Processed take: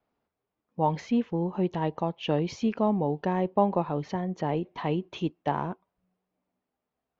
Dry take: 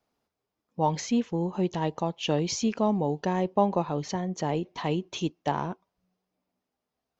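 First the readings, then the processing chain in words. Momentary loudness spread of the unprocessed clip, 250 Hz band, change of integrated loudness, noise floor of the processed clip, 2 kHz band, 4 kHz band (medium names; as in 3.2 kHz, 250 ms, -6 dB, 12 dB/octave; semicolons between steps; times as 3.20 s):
6 LU, 0.0 dB, 0.0 dB, under -85 dBFS, -1.5 dB, -6.0 dB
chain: low-pass 2.7 kHz 12 dB/octave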